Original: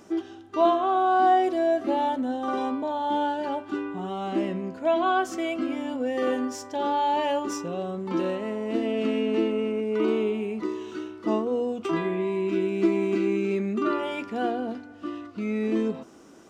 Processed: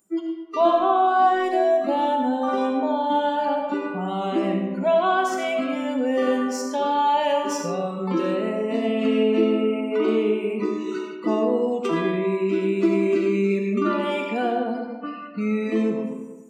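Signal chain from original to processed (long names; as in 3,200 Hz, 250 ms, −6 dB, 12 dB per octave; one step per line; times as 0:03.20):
noise reduction from a noise print of the clip's start 30 dB
comb and all-pass reverb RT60 1.1 s, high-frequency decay 0.6×, pre-delay 30 ms, DRR 3 dB
in parallel at +0.5 dB: downward compressor, threshold −31 dBFS, peak gain reduction 15.5 dB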